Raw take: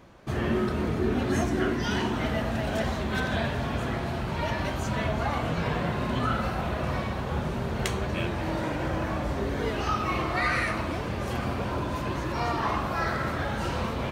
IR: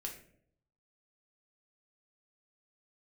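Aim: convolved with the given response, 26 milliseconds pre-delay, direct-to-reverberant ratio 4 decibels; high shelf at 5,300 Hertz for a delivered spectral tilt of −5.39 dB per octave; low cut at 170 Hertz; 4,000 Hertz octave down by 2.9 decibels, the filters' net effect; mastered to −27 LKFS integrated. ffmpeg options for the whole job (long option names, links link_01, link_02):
-filter_complex "[0:a]highpass=170,equalizer=frequency=4000:width_type=o:gain=-6,highshelf=frequency=5300:gain=5,asplit=2[link_01][link_02];[1:a]atrim=start_sample=2205,adelay=26[link_03];[link_02][link_03]afir=irnorm=-1:irlink=0,volume=-2.5dB[link_04];[link_01][link_04]amix=inputs=2:normalize=0,volume=1.5dB"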